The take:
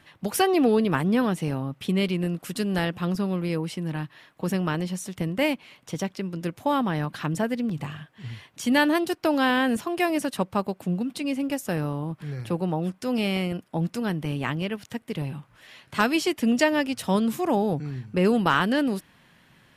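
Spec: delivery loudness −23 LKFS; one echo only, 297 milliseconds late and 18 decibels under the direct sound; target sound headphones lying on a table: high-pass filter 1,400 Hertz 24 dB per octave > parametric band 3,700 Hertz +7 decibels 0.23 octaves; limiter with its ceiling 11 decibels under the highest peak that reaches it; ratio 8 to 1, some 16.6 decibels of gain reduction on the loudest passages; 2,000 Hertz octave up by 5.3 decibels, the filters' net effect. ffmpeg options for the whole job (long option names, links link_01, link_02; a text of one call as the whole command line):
ffmpeg -i in.wav -af "equalizer=frequency=2000:width_type=o:gain=7.5,acompressor=threshold=-30dB:ratio=8,alimiter=level_in=2.5dB:limit=-24dB:level=0:latency=1,volume=-2.5dB,highpass=frequency=1400:width=0.5412,highpass=frequency=1400:width=1.3066,equalizer=frequency=3700:width_type=o:width=0.23:gain=7,aecho=1:1:297:0.126,volume=19dB" out.wav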